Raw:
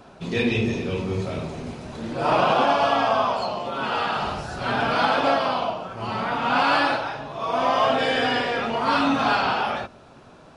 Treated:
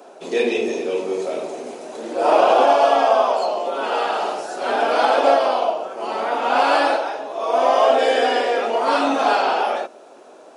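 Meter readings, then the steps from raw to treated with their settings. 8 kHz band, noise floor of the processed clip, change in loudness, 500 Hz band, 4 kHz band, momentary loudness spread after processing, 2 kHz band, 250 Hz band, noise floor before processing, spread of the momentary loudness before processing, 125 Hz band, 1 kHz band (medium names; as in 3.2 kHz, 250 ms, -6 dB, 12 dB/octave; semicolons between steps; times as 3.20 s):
no reading, -44 dBFS, +4.0 dB, +7.5 dB, 0.0 dB, 12 LU, 0.0 dB, -1.5 dB, -48 dBFS, 11 LU, under -20 dB, +4.0 dB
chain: high-pass 350 Hz 24 dB/octave; high-order bell 2.2 kHz -8 dB 2.7 oct; trim +8 dB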